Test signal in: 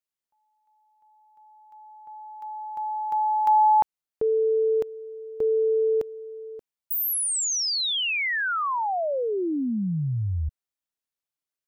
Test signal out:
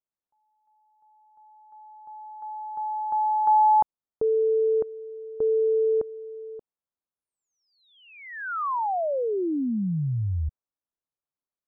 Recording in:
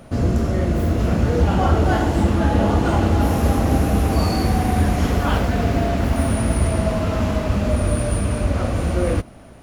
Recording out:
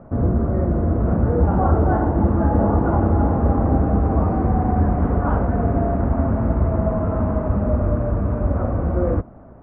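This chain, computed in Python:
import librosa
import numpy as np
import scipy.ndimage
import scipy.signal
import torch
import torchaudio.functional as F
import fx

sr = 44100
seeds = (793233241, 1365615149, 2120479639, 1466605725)

y = scipy.signal.sosfilt(scipy.signal.butter(4, 1300.0, 'lowpass', fs=sr, output='sos'), x)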